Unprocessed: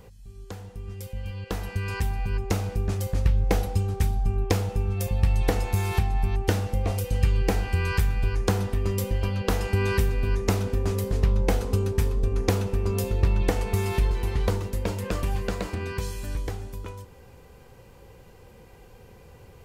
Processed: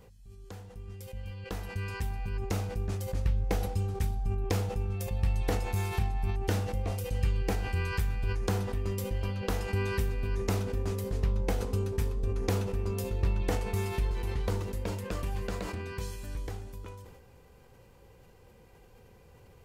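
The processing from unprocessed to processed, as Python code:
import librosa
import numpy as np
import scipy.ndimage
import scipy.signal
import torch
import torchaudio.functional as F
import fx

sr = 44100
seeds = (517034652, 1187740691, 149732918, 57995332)

y = fx.sustainer(x, sr, db_per_s=44.0)
y = y * librosa.db_to_amplitude(-7.5)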